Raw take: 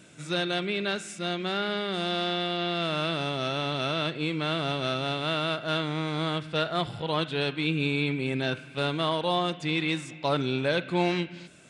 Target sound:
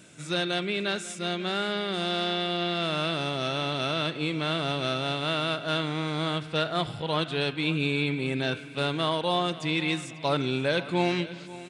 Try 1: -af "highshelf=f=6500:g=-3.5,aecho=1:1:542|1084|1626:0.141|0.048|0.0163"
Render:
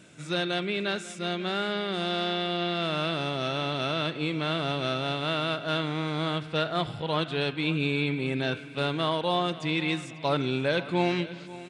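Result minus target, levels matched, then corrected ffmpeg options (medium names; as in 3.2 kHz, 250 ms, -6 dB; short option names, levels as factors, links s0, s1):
8 kHz band -4.0 dB
-af "highshelf=f=6500:g=4.5,aecho=1:1:542|1084|1626:0.141|0.048|0.0163"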